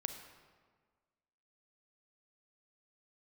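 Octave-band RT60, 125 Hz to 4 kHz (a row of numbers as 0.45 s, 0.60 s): 1.6 s, 1.7 s, 1.6 s, 1.6 s, 1.3 s, 1.0 s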